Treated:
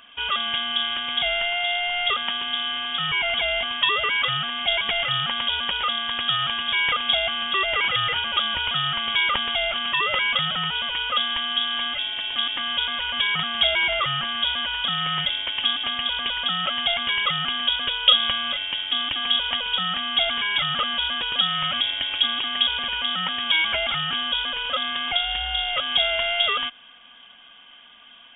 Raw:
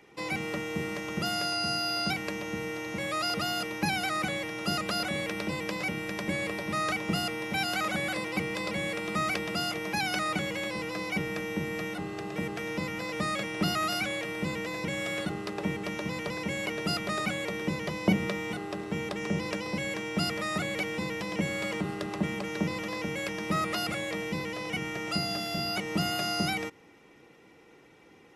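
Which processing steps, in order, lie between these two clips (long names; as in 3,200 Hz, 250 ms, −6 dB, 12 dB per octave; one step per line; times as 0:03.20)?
voice inversion scrambler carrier 3,500 Hz
level +8 dB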